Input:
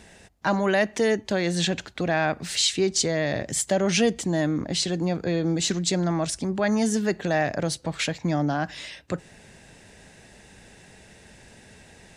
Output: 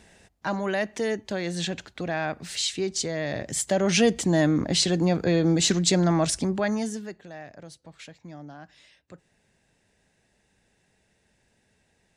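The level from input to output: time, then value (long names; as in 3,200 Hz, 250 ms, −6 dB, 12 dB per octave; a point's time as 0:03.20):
0:03.11 −5 dB
0:04.31 +3 dB
0:06.40 +3 dB
0:06.82 −5.5 dB
0:07.25 −18 dB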